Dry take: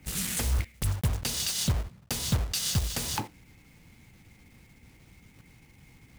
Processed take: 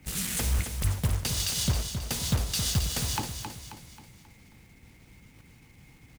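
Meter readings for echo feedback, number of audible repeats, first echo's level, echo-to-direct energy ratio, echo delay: 46%, 5, -7.5 dB, -6.5 dB, 0.268 s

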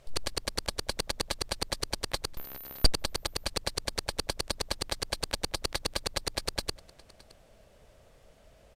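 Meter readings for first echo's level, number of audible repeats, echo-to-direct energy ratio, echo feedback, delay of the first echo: -23.5 dB, 1, -23.5 dB, no steady repeat, 0.617 s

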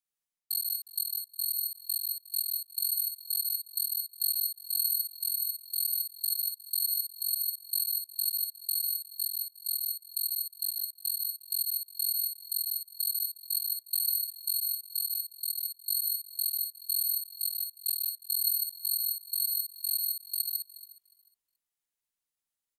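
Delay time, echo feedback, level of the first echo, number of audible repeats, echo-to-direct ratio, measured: 74 ms, no steady repeat, -5.5 dB, 8, 0.0 dB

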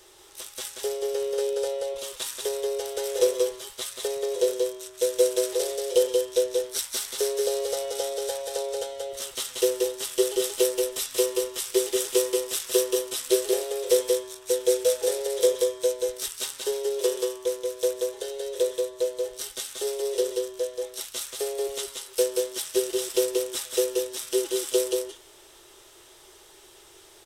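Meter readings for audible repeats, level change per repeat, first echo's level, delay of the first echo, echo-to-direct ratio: 1, no steady repeat, -3.5 dB, 0.182 s, -3.5 dB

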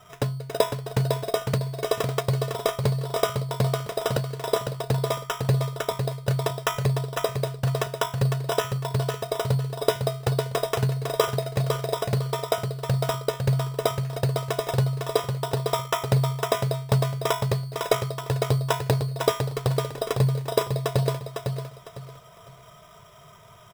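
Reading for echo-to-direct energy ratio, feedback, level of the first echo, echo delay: -5.0 dB, 28%, -5.5 dB, 0.504 s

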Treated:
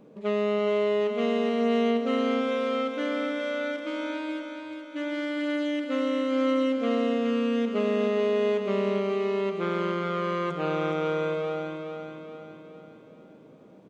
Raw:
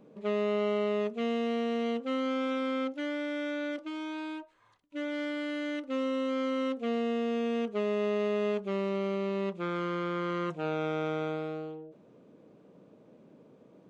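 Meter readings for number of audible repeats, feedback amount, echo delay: 5, 50%, 0.421 s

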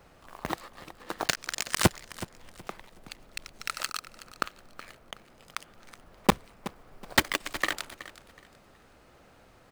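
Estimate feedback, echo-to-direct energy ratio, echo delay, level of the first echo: 27%, -15.5 dB, 0.372 s, -16.0 dB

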